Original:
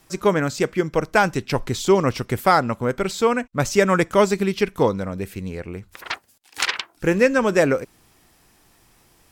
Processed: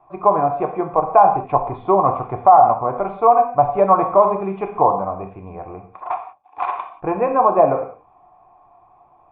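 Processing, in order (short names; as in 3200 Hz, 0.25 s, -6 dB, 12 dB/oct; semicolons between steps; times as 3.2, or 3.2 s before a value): vocal tract filter a; non-linear reverb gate 0.21 s falling, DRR 4 dB; dynamic EQ 2100 Hz, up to -4 dB, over -44 dBFS, Q 0.91; maximiser +20.5 dB; gain -1 dB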